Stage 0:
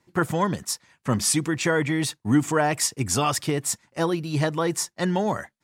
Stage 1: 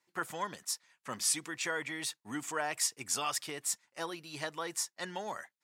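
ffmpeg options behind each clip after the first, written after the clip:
-af "highpass=f=1.3k:p=1,volume=-7dB"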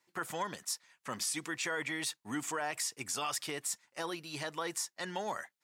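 -af "alimiter=level_in=3.5dB:limit=-24dB:level=0:latency=1:release=47,volume=-3.5dB,volume=2.5dB"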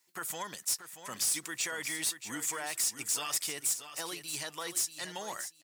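-filter_complex "[0:a]crystalizer=i=4:c=0,asoftclip=type=hard:threshold=-21dB,asplit=2[a][b];[b]aecho=0:1:632|1264|1896:0.299|0.0657|0.0144[c];[a][c]amix=inputs=2:normalize=0,volume=-5dB"

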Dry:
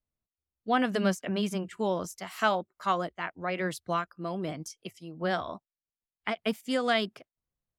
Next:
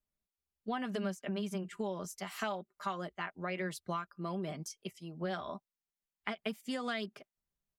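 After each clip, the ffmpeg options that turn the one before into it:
-af "aecho=1:1:5:0.48,acompressor=threshold=-31dB:ratio=5,volume=-3dB"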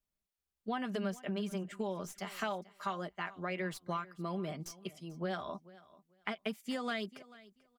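-filter_complex "[0:a]acrossover=split=4300[a][b];[b]aeval=exprs='clip(val(0),-1,0.002)':c=same[c];[a][c]amix=inputs=2:normalize=0,aecho=1:1:439|878:0.1|0.018"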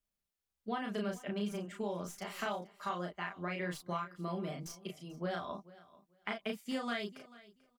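-filter_complex "[0:a]asplit=2[a][b];[b]adelay=34,volume=-3dB[c];[a][c]amix=inputs=2:normalize=0,volume=-2dB"

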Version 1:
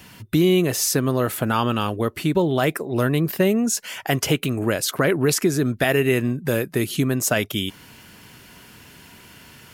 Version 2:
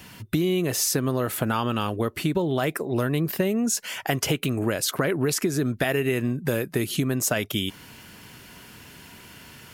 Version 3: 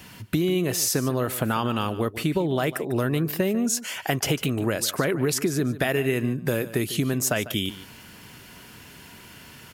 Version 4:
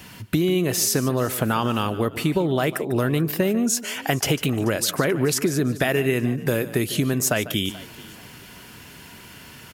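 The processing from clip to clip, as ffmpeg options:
-af "acompressor=threshold=-20dB:ratio=6"
-af "aecho=1:1:148:0.168"
-filter_complex "[0:a]asplit=3[a][b][c];[b]adelay=434,afreqshift=38,volume=-21dB[d];[c]adelay=868,afreqshift=76,volume=-31.5dB[e];[a][d][e]amix=inputs=3:normalize=0,volume=2.5dB"

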